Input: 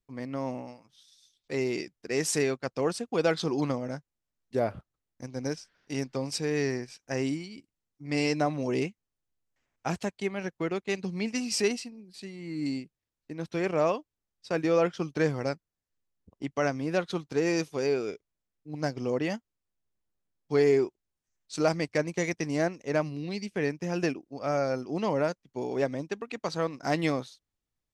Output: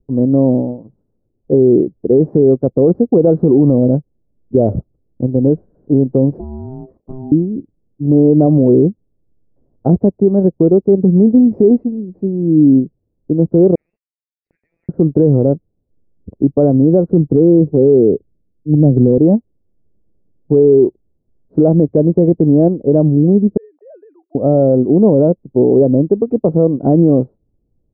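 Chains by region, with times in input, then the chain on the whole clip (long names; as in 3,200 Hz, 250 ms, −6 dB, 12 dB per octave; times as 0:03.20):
0:06.39–0:07.32: ring modulation 520 Hz + downward compressor, threshold −46 dBFS
0:13.75–0:14.89: Butterworth high-pass 2,000 Hz 72 dB per octave + transient designer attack +3 dB, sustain +8 dB
0:17.10–0:19.18: tilt shelving filter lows +8.5 dB, about 810 Hz + multiband upward and downward expander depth 40%
0:23.57–0:24.35: three sine waves on the formant tracks + high-pass filter 890 Hz 24 dB per octave + downward compressor 4 to 1, threshold −48 dBFS
whole clip: inverse Chebyshev low-pass filter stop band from 3,000 Hz, stop band 80 dB; boost into a limiter +26 dB; level −1 dB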